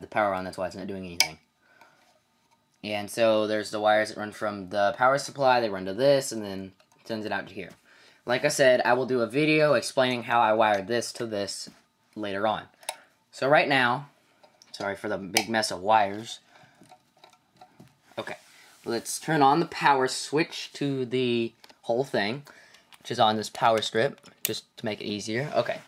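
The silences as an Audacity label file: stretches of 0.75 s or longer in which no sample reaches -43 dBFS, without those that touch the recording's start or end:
1.820000	2.840000	silence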